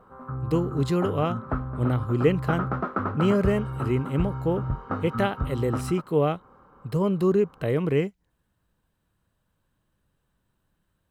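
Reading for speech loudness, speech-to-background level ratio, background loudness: -26.0 LUFS, 5.5 dB, -31.5 LUFS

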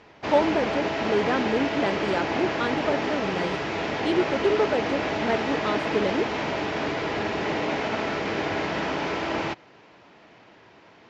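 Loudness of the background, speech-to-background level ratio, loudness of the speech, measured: -27.5 LUFS, 0.0 dB, -27.5 LUFS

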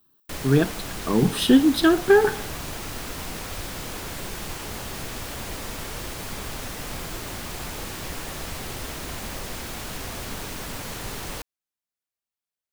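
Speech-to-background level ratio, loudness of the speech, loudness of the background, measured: 13.0 dB, -20.0 LUFS, -33.0 LUFS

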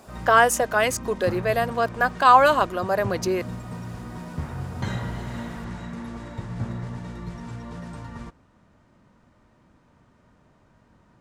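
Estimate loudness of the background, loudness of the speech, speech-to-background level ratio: -35.0 LUFS, -20.5 LUFS, 14.5 dB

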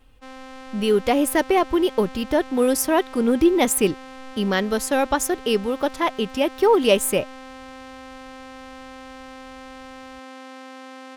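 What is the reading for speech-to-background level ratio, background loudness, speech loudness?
19.0 dB, -40.0 LUFS, -21.0 LUFS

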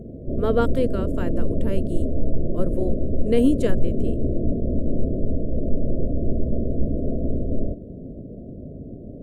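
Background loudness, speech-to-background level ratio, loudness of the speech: -27.0 LUFS, 1.0 dB, -26.0 LUFS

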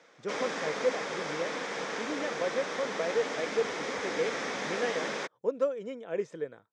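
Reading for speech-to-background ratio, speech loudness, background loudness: -0.5 dB, -35.0 LUFS, -34.5 LUFS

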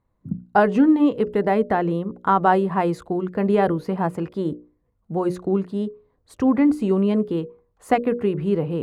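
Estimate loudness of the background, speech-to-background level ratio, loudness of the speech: -34.0 LUFS, 12.5 dB, -21.5 LUFS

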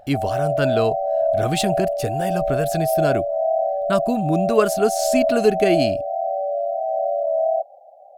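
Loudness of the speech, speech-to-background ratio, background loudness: -22.5 LUFS, 0.0 dB, -22.5 LUFS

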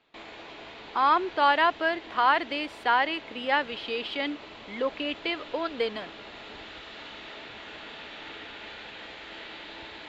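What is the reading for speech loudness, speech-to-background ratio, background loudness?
-27.0 LUFS, 15.5 dB, -42.5 LUFS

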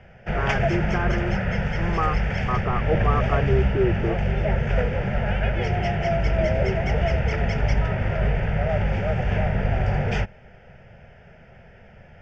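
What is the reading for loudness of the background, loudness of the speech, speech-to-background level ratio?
-24.0 LUFS, -28.0 LUFS, -4.0 dB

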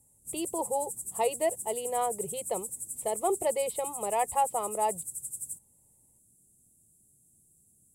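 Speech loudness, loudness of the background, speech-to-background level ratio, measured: -32.0 LUFS, -36.5 LUFS, 4.5 dB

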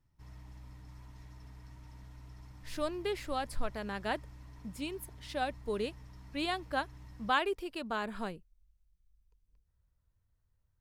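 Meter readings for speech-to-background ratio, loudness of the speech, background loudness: 16.0 dB, -37.0 LUFS, -53.0 LUFS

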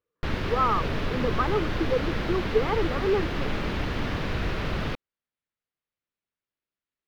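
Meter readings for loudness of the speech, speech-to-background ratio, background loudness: -28.5 LUFS, 1.5 dB, -30.0 LUFS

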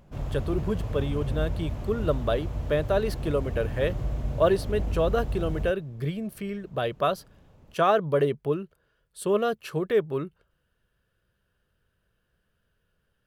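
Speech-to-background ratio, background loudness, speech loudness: 5.0 dB, -33.0 LUFS, -28.0 LUFS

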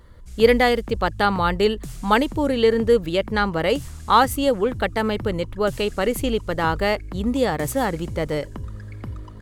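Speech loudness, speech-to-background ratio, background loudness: -21.5 LUFS, 15.0 dB, -36.5 LUFS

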